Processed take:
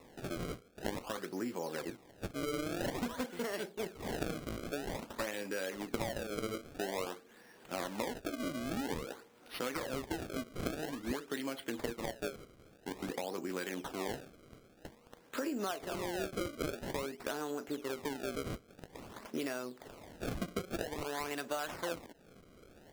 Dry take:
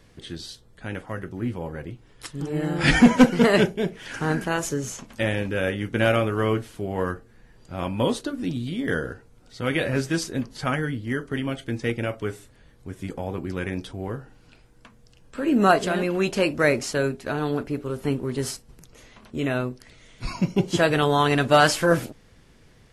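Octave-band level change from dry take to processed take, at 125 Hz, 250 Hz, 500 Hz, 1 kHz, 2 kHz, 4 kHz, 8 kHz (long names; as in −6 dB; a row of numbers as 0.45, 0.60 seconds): −19.5, −16.0, −14.0, −15.0, −16.5, −13.0, −11.0 decibels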